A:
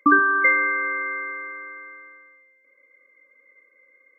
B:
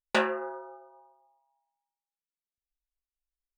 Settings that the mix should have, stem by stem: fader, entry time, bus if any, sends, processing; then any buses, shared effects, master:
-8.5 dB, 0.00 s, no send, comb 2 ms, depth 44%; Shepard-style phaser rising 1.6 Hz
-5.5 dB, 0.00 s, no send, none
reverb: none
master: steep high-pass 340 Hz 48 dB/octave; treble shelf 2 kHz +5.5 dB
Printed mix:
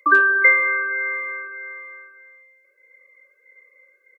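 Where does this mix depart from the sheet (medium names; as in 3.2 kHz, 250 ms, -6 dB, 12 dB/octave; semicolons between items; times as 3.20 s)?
stem A -8.5 dB -> +1.0 dB; stem B -5.5 dB -> -16.5 dB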